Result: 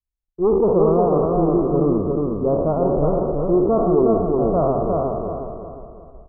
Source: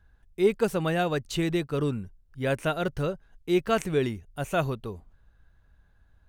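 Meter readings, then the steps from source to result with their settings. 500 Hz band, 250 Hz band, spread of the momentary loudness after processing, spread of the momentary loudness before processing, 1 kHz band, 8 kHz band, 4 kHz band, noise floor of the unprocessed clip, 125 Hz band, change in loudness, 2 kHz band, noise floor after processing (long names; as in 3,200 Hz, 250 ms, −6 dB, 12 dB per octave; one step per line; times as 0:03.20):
+11.0 dB, +10.0 dB, 9 LU, 12 LU, +9.5 dB, below −35 dB, below −40 dB, −63 dBFS, +7.0 dB, +9.0 dB, below −20 dB, −82 dBFS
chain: peak hold with a decay on every bin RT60 1.38 s
asymmetric clip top −21 dBFS, bottom −15 dBFS
Butterworth low-pass 1,200 Hz 96 dB per octave
spectral tilt −1.5 dB per octave
on a send: repeating echo 358 ms, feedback 39%, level −3 dB
on the sum: automatic gain control gain up to 4 dB
noise gate −41 dBFS, range −38 dB
parametric band 120 Hz −12 dB 0.5 octaves
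level +1 dB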